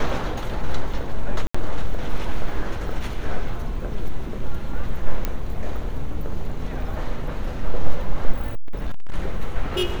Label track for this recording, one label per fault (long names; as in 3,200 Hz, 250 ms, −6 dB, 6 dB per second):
1.470000	1.540000	drop-out 75 ms
5.250000	5.250000	click −10 dBFS
8.550000	9.140000	clipping −17 dBFS